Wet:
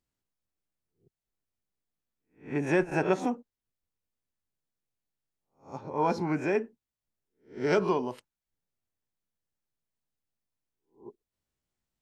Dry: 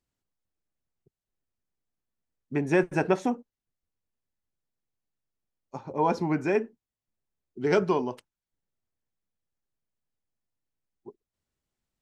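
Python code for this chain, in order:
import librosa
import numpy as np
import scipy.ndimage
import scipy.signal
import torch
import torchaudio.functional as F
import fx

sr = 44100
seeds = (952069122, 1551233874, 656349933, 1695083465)

y = fx.spec_swells(x, sr, rise_s=0.32)
y = F.gain(torch.from_numpy(y), -3.0).numpy()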